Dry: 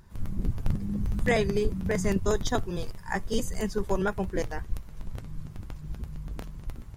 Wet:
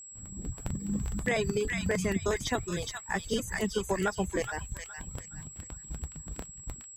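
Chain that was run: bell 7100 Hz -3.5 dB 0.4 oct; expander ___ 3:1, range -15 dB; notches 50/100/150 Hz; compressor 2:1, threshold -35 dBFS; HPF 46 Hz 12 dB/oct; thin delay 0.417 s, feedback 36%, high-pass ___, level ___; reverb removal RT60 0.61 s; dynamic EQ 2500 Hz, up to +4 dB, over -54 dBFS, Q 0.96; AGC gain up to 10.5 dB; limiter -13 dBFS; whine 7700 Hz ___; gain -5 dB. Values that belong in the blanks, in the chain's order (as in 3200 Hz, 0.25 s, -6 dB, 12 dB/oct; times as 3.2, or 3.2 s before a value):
-29 dBFS, 1400 Hz, -3.5 dB, -40 dBFS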